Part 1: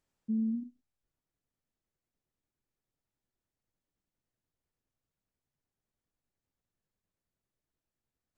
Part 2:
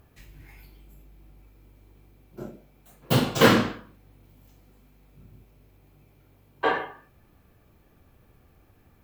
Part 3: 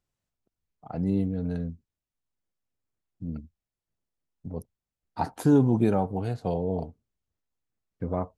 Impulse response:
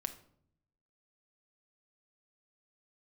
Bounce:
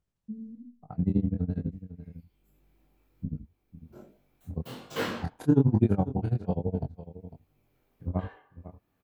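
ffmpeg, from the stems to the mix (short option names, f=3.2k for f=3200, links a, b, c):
-filter_complex "[0:a]lowshelf=f=230:g=11.5,volume=-8dB,asplit=2[a][b];[b]volume=-7.5dB[c];[1:a]lowshelf=f=140:g=-9,adelay=1550,volume=-6dB,afade=t=in:st=2.25:d=0.4:silence=0.421697[d];[2:a]bass=f=250:g=9,treble=f=4k:g=-7,aeval=exprs='val(0)*pow(10,-31*(0.5-0.5*cos(2*PI*12*n/s))/20)':c=same,volume=3dB,asplit=3[e][f][g];[f]volume=-14.5dB[h];[g]apad=whole_len=466739[i];[d][i]sidechaincompress=threshold=-33dB:ratio=8:attack=5:release=843[j];[3:a]atrim=start_sample=2205[k];[c][k]afir=irnorm=-1:irlink=0[l];[h]aecho=0:1:501:1[m];[a][j][e][l][m]amix=inputs=5:normalize=0,flanger=delay=19.5:depth=5.6:speed=1.2"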